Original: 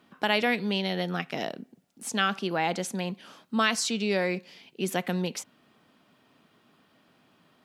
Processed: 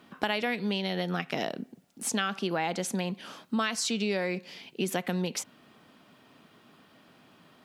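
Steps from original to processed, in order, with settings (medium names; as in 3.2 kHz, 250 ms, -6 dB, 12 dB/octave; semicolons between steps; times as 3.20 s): compression 4:1, threshold -32 dBFS, peak gain reduction 11.5 dB; trim +5 dB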